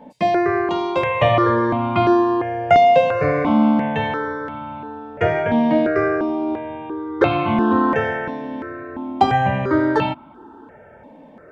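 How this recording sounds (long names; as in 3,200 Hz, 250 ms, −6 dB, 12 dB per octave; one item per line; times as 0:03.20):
notches that jump at a steady rate 2.9 Hz 370–1,700 Hz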